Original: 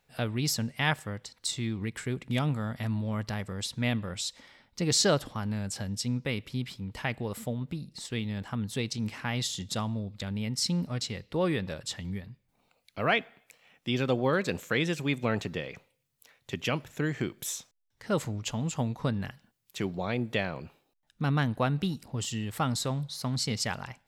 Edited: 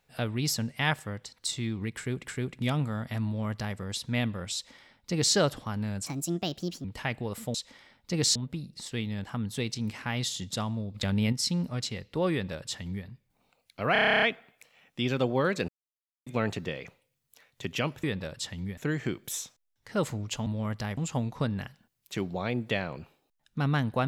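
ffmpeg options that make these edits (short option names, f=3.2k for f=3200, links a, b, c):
-filter_complex "[0:a]asplit=24[a][b][c][d][e][f][g][h][i][j][k][l][m][n][o][p][q][r][s][t][u][v][w][x];[a]atrim=end=2.272[y];[b]atrim=start=1.958:end=5.754[z];[c]atrim=start=5.75:end=6.84,asetpts=PTS-STARTPTS,asetrate=61299,aresample=44100,atrim=end_sample=34582,asetpts=PTS-STARTPTS[aa];[d]atrim=start=6.836:end=7.542[ab];[e]atrim=start=4.228:end=5.042[ac];[f]atrim=start=7.538:end=10.132[ad];[g]atrim=start=10.128:end=10.512,asetpts=PTS-STARTPTS,volume=6.5dB[ae];[h]atrim=start=10.508:end=13.142[af];[i]atrim=start=13.108:end=13.142[ag];[j]atrim=start=13.108:end=13.142[ah];[k]atrim=start=13.108:end=13.142[ai];[l]atrim=start=13.108:end=13.142[aj];[m]atrim=start=13.108:end=13.142[ak];[n]atrim=start=13.108:end=13.142[al];[o]atrim=start=13.108:end=13.142[am];[p]atrim=start=13.108:end=13.142[an];[q]atrim=start=13.108:end=13.142[ao];[r]atrim=start=13.108:end=14.57,asetpts=PTS-STARTPTS,afade=t=out:st=1.458:d=0.004:c=hsin[ap];[s]atrim=start=14.57:end=15.15,asetpts=PTS-STARTPTS,volume=0[aq];[t]atrim=start=15.15:end=16.922,asetpts=PTS-STARTPTS,afade=t=in:d=0.004:c=hsin[ar];[u]atrim=start=11.498:end=12.242[as];[v]atrim=start=16.918:end=18.612[at];[w]atrim=start=2.948:end=3.462[au];[x]atrim=start=18.608[av];[y][z]acrossfade=d=0.004:c1=hsin:c2=hsin[aw];[aw][aa]acrossfade=d=0.004:c1=hsin:c2=hsin[ax];[ax][ab]acrossfade=d=0.004:c1=hsin:c2=hsin[ay];[ay][ac]acrossfade=d=0.004:c1=hsin:c2=hsin[az];[az][ad]acrossfade=d=0.004:c1=hsin:c2=hsin[ba];[ba][ae]acrossfade=d=0.004:c1=hsin:c2=hsin[bb];[bb][af]acrossfade=d=0.004:c1=hsin:c2=hsin[bc];[bc][ag]acrossfade=d=0.004:c1=hsin:c2=hsin[bd];[bd][ah]acrossfade=d=0.004:c1=hsin:c2=hsin[be];[be][ai]acrossfade=d=0.004:c1=hsin:c2=hsin[bf];[bf][aj]acrossfade=d=0.004:c1=hsin:c2=hsin[bg];[bg][ak]acrossfade=d=0.004:c1=hsin:c2=hsin[bh];[bh][al]acrossfade=d=0.004:c1=hsin:c2=hsin[bi];[bi][am]acrossfade=d=0.004:c1=hsin:c2=hsin[bj];[bj][an]acrossfade=d=0.004:c1=hsin:c2=hsin[bk];[bk][ao]acrossfade=d=0.004:c1=hsin:c2=hsin[bl];[ap][aq][ar]concat=n=3:v=0:a=1[bm];[bl][bm]acrossfade=d=0.004:c1=hsin:c2=hsin[bn];[bn][as]acrossfade=d=0.004:c1=hsin:c2=hsin[bo];[bo][at]acrossfade=d=0.004:c1=hsin:c2=hsin[bp];[bp][au]acrossfade=d=0.004:c1=hsin:c2=hsin[bq];[bq][av]acrossfade=d=0.004:c1=hsin:c2=hsin"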